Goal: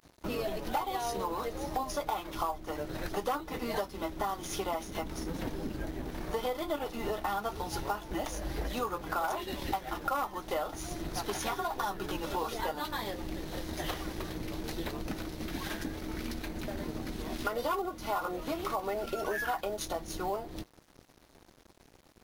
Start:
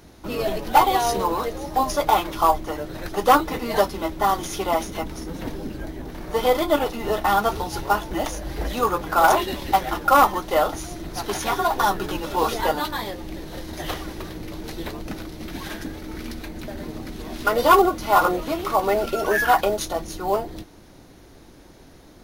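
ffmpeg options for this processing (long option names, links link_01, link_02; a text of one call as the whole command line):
ffmpeg -i in.wav -af "aeval=exprs='sgn(val(0))*max(abs(val(0))-0.00531,0)':channel_layout=same,acompressor=threshold=-30dB:ratio=5,volume=-1.5dB" out.wav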